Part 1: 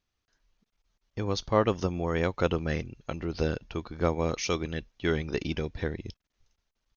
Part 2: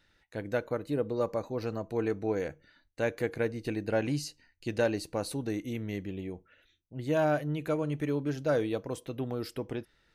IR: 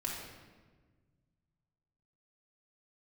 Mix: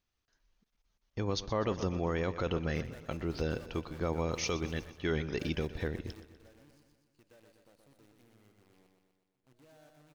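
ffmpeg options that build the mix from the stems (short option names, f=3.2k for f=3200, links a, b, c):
-filter_complex "[0:a]volume=-2.5dB,asplit=3[a][b][c];[b]volume=-16.5dB[d];[1:a]acompressor=threshold=-39dB:ratio=2,acrusher=bits=7:dc=4:mix=0:aa=0.000001,adelay=2400,volume=-15.5dB,asplit=2[e][f];[f]volume=-11dB[g];[c]apad=whole_len=553237[h];[e][h]sidechaingate=range=-33dB:threshold=-55dB:ratio=16:detection=peak[i];[d][g]amix=inputs=2:normalize=0,aecho=0:1:123|246|369|492|615|738|861|984|1107:1|0.59|0.348|0.205|0.121|0.0715|0.0422|0.0249|0.0147[j];[a][i][j]amix=inputs=3:normalize=0,alimiter=limit=-21.5dB:level=0:latency=1:release=12"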